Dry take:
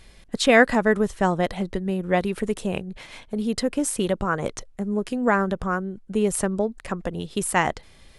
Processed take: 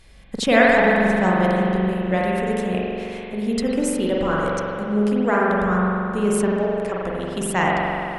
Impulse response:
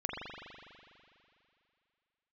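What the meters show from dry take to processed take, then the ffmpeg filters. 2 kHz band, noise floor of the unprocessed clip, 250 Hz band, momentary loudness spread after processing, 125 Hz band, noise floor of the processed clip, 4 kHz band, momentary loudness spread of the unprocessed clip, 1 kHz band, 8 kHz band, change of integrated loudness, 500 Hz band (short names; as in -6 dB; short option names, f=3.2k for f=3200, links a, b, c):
+3.5 dB, -51 dBFS, +4.0 dB, 10 LU, +4.5 dB, -34 dBFS, +0.5 dB, 13 LU, +4.0 dB, -2.5 dB, +3.5 dB, +3.5 dB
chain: -filter_complex "[1:a]atrim=start_sample=2205,asetrate=41895,aresample=44100[a];[0:a][a]afir=irnorm=-1:irlink=0,volume=-1.5dB"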